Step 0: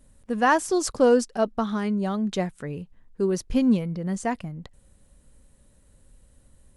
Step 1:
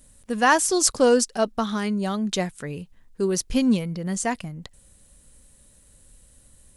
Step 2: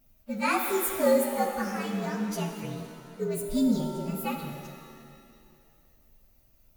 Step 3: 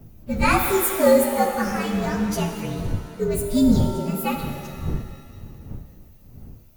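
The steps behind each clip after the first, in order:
high shelf 2500 Hz +11.5 dB
inharmonic rescaling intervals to 117%; shimmer reverb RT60 2.2 s, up +7 st, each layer -8 dB, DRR 4 dB; gain -5 dB
wind noise 120 Hz -38 dBFS; gain +7 dB

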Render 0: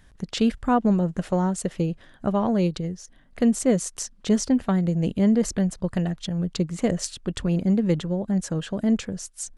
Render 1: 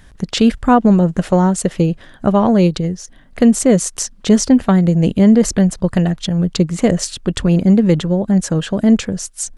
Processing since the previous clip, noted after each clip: maximiser +11 dB; gain -1 dB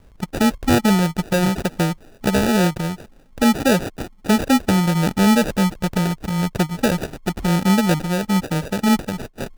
sample-and-hold 41×; gain -5 dB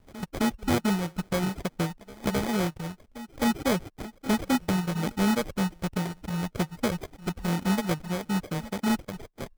sample-and-hold 16×; pre-echo 0.262 s -16.5 dB; reverb removal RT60 0.71 s; gain -8.5 dB

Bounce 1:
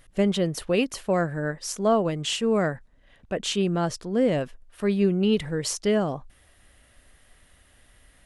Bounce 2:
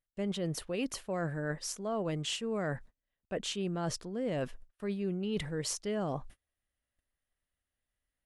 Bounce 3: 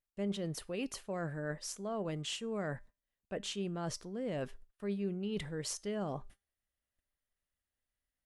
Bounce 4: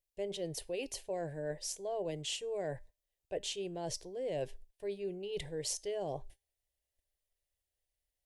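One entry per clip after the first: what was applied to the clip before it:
gate -46 dBFS, range -31 dB; reverse; compressor, threshold -31 dBFS, peak gain reduction 14 dB; reverse; gain -1 dB
resonator 200 Hz, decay 0.3 s, harmonics all, mix 40%
fixed phaser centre 530 Hz, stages 4; gain +3 dB

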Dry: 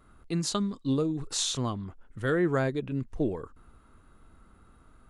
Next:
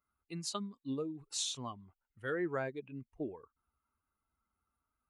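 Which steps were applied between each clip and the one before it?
per-bin expansion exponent 1.5; HPF 340 Hz 6 dB/oct; gain -5.5 dB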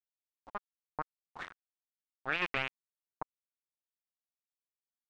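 low shelf 68 Hz -8.5 dB; bit-crush 5-bit; envelope low-pass 780–2600 Hz up, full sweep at -33 dBFS; gain -1 dB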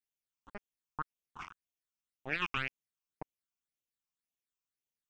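phaser stages 8, 1.9 Hz, lowest notch 510–1500 Hz; gain +2 dB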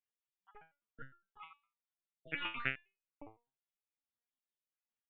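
random spectral dropouts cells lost 29%; downsampling 8000 Hz; stepped resonator 9.8 Hz 110–420 Hz; gain +8.5 dB

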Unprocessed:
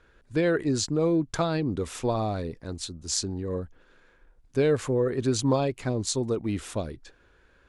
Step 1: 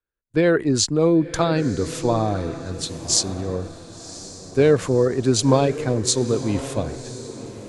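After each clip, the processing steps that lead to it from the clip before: diffused feedback echo 1.069 s, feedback 50%, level -10 dB; gate with hold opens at -37 dBFS; three-band expander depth 40%; gain +6 dB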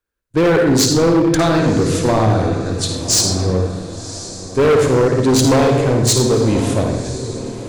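on a send at -3.5 dB: reverb RT60 1.1 s, pre-delay 54 ms; on the sum: overloaded stage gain 16 dB; gain +6.5 dB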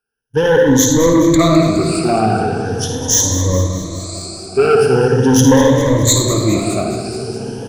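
moving spectral ripple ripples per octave 1.1, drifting +0.41 Hz, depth 22 dB; on a send: feedback echo 0.208 s, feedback 57%, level -11.5 dB; on the sum: gain -4 dB

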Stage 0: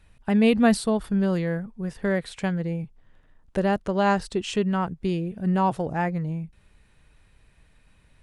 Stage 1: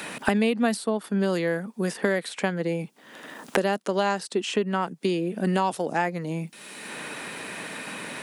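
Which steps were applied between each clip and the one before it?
HPF 220 Hz 24 dB/oct; high shelf 4100 Hz +8.5 dB; three-band squash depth 100%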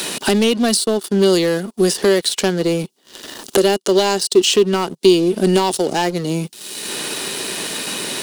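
sample leveller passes 3; resonant high shelf 3000 Hz +9 dB, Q 1.5; small resonant body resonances 380/2900 Hz, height 10 dB; gain -3.5 dB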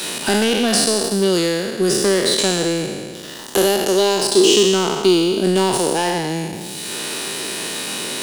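spectral trails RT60 1.76 s; gain -4 dB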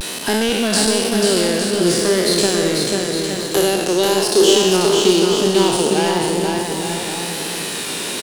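vibrato 0.97 Hz 83 cents; on a send: bouncing-ball echo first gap 0.49 s, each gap 0.75×, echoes 5; on the sum: gain -1 dB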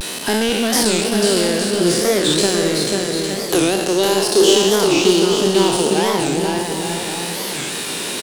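record warp 45 rpm, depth 250 cents

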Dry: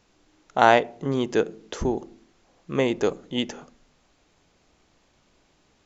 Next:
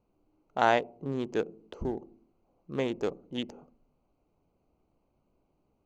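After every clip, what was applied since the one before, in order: Wiener smoothing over 25 samples; gain -7.5 dB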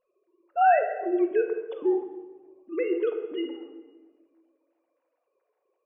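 sine-wave speech; shoebox room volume 990 m³, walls mixed, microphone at 1 m; gain +4 dB

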